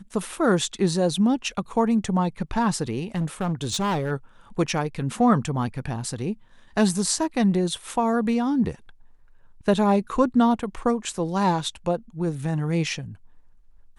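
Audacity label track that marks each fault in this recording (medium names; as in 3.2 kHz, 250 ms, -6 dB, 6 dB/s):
3.150000	4.120000	clipped -21 dBFS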